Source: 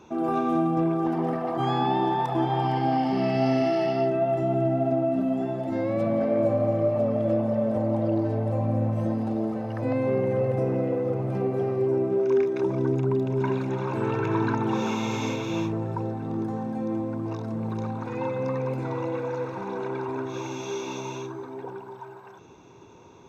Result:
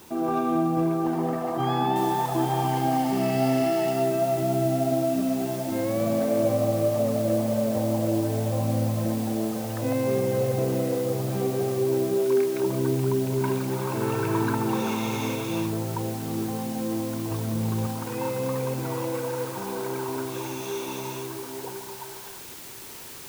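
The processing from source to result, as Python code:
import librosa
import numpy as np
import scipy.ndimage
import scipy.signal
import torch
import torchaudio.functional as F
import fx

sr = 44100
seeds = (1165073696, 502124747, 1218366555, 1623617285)

y = fx.noise_floor_step(x, sr, seeds[0], at_s=1.96, before_db=-52, after_db=-42, tilt_db=0.0)
y = fx.low_shelf(y, sr, hz=120.0, db=10.0, at=(17.31, 17.87))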